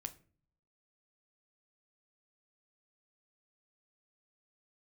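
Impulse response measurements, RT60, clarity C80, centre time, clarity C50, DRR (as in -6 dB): no single decay rate, 22.5 dB, 5 ms, 17.5 dB, 8.0 dB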